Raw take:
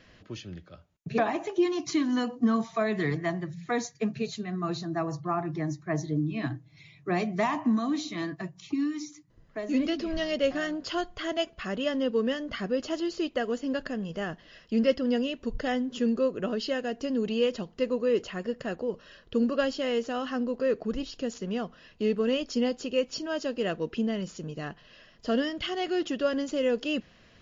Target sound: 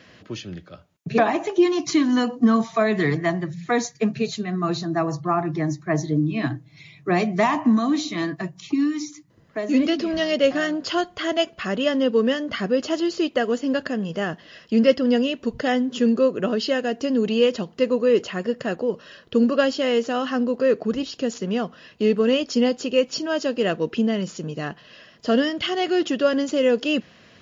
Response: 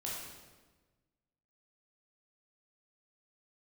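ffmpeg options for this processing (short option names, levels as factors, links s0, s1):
-af "highpass=110,volume=2.37"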